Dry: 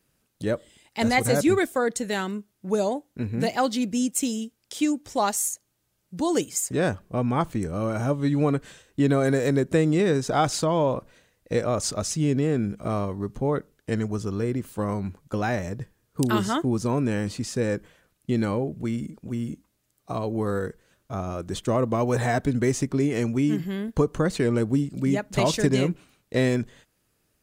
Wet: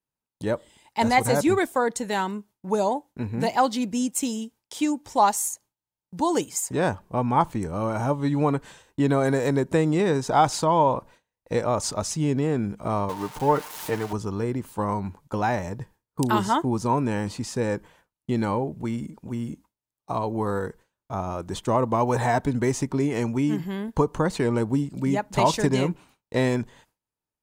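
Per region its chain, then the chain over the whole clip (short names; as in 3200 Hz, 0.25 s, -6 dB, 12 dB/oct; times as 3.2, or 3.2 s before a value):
13.09–14.13 switching spikes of -19.5 dBFS + comb 6.6 ms, depth 51% + overdrive pedal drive 11 dB, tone 1500 Hz, clips at -11.5 dBFS
whole clip: gate with hold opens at -45 dBFS; bell 910 Hz +12.5 dB 0.43 oct; gain -1 dB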